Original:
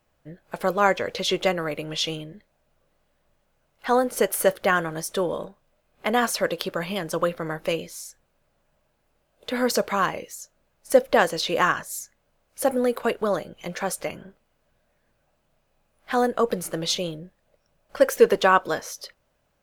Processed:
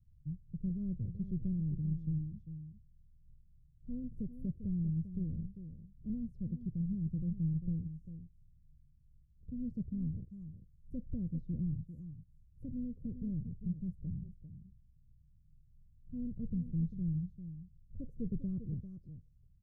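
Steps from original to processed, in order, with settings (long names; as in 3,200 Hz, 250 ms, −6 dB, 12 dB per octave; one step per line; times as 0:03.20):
inverse Chebyshev low-pass filter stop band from 780 Hz, stop band 80 dB
on a send: single-tap delay 396 ms −11 dB
on the sum: one half of a high-frequency compander encoder only
level +11 dB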